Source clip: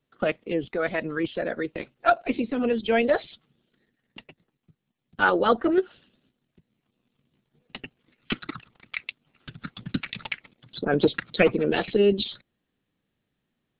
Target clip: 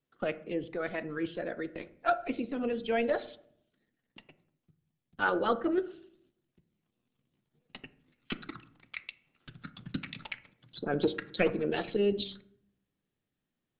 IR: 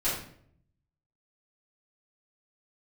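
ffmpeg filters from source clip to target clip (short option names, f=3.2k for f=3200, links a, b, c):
-filter_complex "[0:a]asplit=2[a][b];[1:a]atrim=start_sample=2205,lowpass=2.1k[c];[b][c]afir=irnorm=-1:irlink=0,volume=-19.5dB[d];[a][d]amix=inputs=2:normalize=0,volume=-8.5dB"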